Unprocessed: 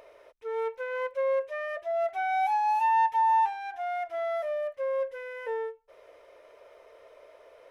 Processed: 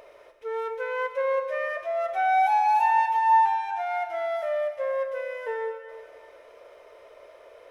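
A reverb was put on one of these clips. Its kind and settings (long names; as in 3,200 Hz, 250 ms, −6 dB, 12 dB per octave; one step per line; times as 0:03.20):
dense smooth reverb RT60 2.2 s, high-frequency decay 1×, DRR 6 dB
level +3 dB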